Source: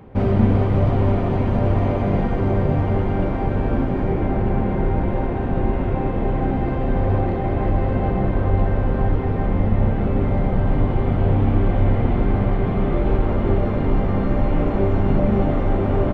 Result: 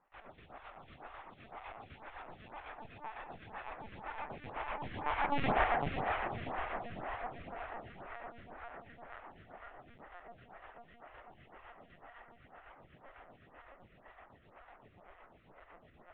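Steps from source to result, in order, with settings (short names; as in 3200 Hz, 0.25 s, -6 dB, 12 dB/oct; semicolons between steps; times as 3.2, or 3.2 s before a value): Doppler pass-by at 5.48, 37 m/s, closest 4.2 m; HPF 1200 Hz 12 dB/oct; in parallel at -2 dB: compressor, threshold -60 dBFS, peak gain reduction 22.5 dB; on the sum: chopper 7.9 Hz, depth 60%, duty 55%; multi-head echo 0.163 s, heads first and third, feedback 70%, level -10 dB; LPC vocoder at 8 kHz pitch kept; photocell phaser 2 Hz; gain +15 dB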